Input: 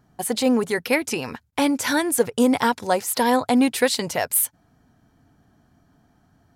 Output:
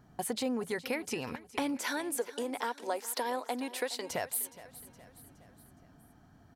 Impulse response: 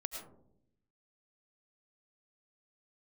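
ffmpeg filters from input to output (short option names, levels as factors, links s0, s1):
-filter_complex "[0:a]equalizer=f=12000:t=o:w=2.2:g=-3,acompressor=threshold=0.0178:ratio=3,asettb=1/sr,asplit=3[s0][s1][s2];[s0]atrim=end=1.774[s3];[s1]atrim=start=1.77:end=4.1,asetpts=PTS-STARTPTS,afade=t=in:d=0.004:c=qsin,afade=t=out:st=2.326:d=0.004:c=qsin,highpass=f=300:w=0.5412,highpass=f=300:w=1.3066[s4];[s2]atrim=start=4.096[s5];[s3][s4]acrossfade=d=0.004:c1=hsin:c2=qsin[s6];[s6][s5]acrossfade=d=0.004:c1=qsin:c2=hsin,aecho=1:1:417|834|1251|1668:0.141|0.0706|0.0353|0.0177"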